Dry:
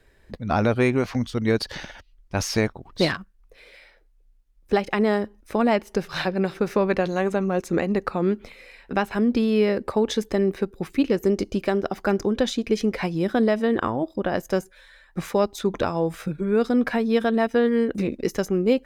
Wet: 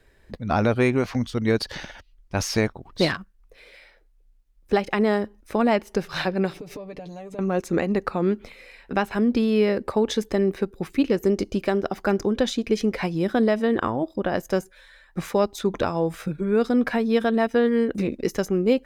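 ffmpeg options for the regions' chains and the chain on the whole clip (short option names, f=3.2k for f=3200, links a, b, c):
-filter_complex "[0:a]asettb=1/sr,asplit=3[a][b][c];[a]atrim=end=6.534[d];[b]atrim=start=6.53:end=7.39,asetpts=PTS-STARTPTS,afade=t=in:d=0.004:c=qsin,afade=t=out:st=0.856:d=0.004:c=qsin,equalizer=f=1.5k:t=o:w=0.64:g=-14,acompressor=threshold=-33dB:ratio=20:attack=3.2:release=140:knee=1:detection=peak,aecho=1:1:6.8:0.7,atrim=end_sample=37926[e];[c]atrim=start=7.386[f];[d][e]acrossfade=d=0.004:c1=hsin:c2=qsin[g];[g][f]acrossfade=d=0.004:c1=qsin:c2=hsin"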